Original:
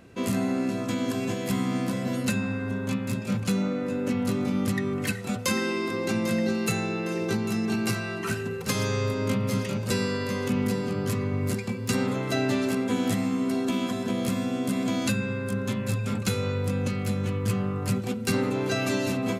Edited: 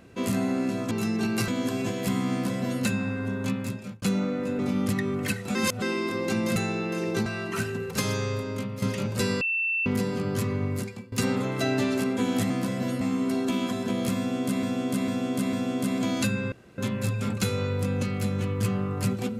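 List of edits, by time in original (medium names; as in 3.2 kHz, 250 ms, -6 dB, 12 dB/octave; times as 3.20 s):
1.75–2.26 s: copy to 13.21 s
3.00–3.45 s: fade out
4.02–4.38 s: delete
5.34–5.61 s: reverse
6.35–6.70 s: delete
7.40–7.97 s: move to 0.91 s
8.70–9.53 s: fade out, to -9.5 dB
10.12–10.57 s: bleep 2.68 kHz -23.5 dBFS
11.34–11.83 s: fade out, to -20.5 dB
14.38–14.83 s: loop, 4 plays
15.37–15.63 s: room tone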